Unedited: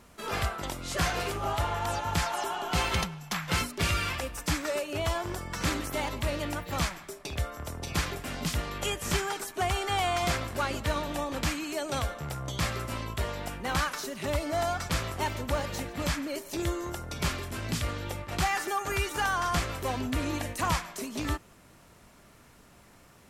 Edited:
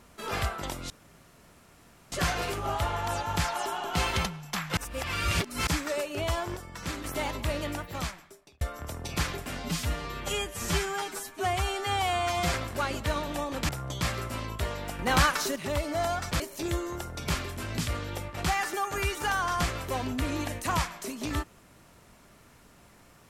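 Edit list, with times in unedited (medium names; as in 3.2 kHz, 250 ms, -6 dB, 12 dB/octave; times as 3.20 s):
0.90 s: insert room tone 1.22 s
3.55–4.45 s: reverse
5.34–5.82 s: gain -6 dB
6.43–7.39 s: fade out
8.38–10.34 s: stretch 1.5×
11.49–12.27 s: delete
13.57–14.14 s: gain +6 dB
14.98–16.34 s: delete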